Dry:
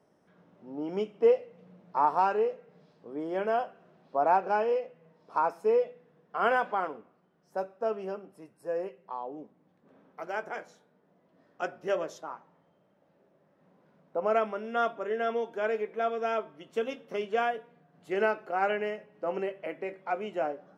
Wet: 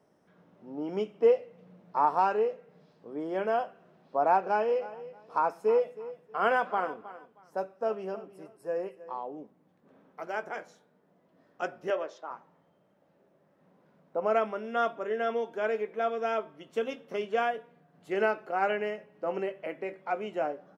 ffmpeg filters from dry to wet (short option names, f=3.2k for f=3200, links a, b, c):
-filter_complex "[0:a]asplit=3[a][b][c];[a]afade=t=out:st=4.69:d=0.02[d];[b]aecho=1:1:316|632:0.158|0.0365,afade=t=in:st=4.69:d=0.02,afade=t=out:st=9.28:d=0.02[e];[c]afade=t=in:st=9.28:d=0.02[f];[d][e][f]amix=inputs=3:normalize=0,asettb=1/sr,asplit=3[g][h][i];[g]atrim=end=11.904[j];[h]atrim=start=11.9:end=12.31,asetpts=PTS-STARTPTS,afade=t=in:d=0.004:c=qsin,afade=t=out:st=0.406:d=0.004:c=qsin,highpass=380,lowpass=3.9k[k];[i]atrim=start=12.306[l];[j][k]acrossfade=d=0.004:c1=hsin:c2=qsin[m];[m][l]acrossfade=d=0.004:c1=qsin:c2=hsin"